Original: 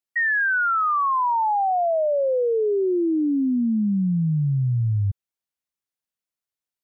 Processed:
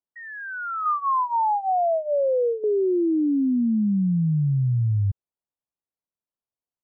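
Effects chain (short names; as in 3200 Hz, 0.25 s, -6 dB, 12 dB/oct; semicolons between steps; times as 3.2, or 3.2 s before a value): LPF 1100 Hz 24 dB/oct; 0.85–2.64 comb 5.7 ms, depth 83%; limiter -18 dBFS, peak gain reduction 5.5 dB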